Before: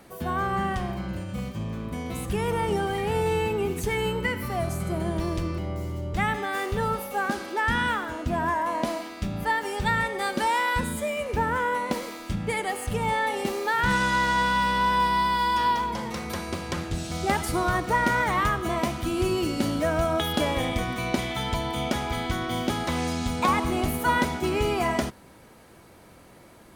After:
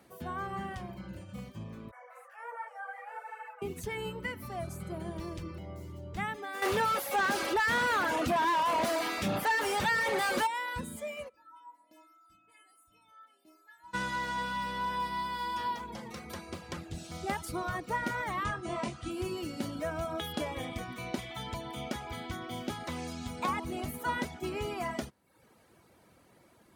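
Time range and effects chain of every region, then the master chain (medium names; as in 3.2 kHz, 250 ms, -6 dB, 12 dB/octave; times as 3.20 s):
1.91–3.62 s: brick-wall FIR high-pass 470 Hz + resonant high shelf 2.4 kHz -12.5 dB, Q 3 + detune thickener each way 25 cents
6.62–10.47 s: peaking EQ 13 kHz +13.5 dB 1.5 oct + overdrive pedal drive 32 dB, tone 2.1 kHz, clips at -10.5 dBFS
11.28–13.93 s: inharmonic resonator 310 Hz, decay 0.81 s, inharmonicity 0.008 + whistle 700 Hz -69 dBFS + filtered feedback delay 64 ms, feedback 50%, low-pass 4.8 kHz, level -20 dB
18.44–19.11 s: steep low-pass 9.5 kHz 48 dB/octave + hard clipper -13.5 dBFS + flutter echo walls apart 3.9 m, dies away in 0.24 s
whole clip: high-pass 64 Hz; reverb removal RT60 0.66 s; trim -9 dB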